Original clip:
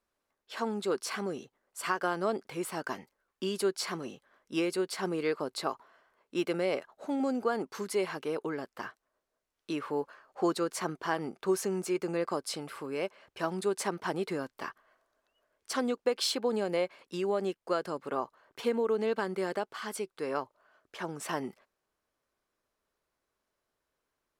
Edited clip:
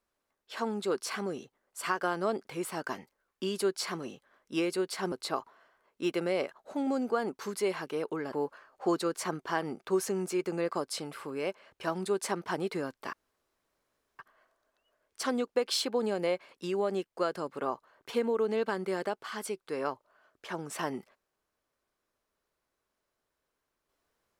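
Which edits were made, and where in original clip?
0:05.12–0:05.45: remove
0:08.66–0:09.89: remove
0:14.69: splice in room tone 1.06 s

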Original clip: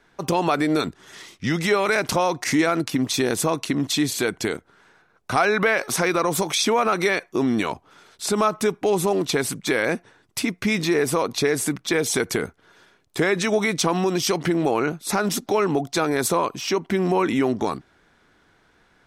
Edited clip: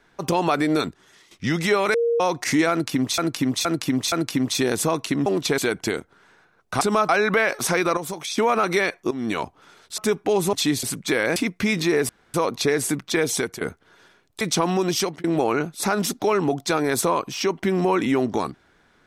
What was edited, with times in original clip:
0:00.83–0:01.31: fade out quadratic, to −13.5 dB
0:01.94–0:02.20: beep over 468 Hz −17.5 dBFS
0:02.71–0:03.18: repeat, 4 plays
0:03.85–0:04.15: swap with 0:09.10–0:09.42
0:06.26–0:06.67: clip gain −8 dB
0:07.40–0:07.68: fade in, from −15.5 dB
0:08.27–0:08.55: move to 0:05.38
0:09.95–0:10.38: remove
0:11.11: splice in room tone 0.25 s
0:12.00–0:12.38: fade out equal-power, to −17 dB
0:13.18–0:13.68: remove
0:14.26–0:14.51: fade out

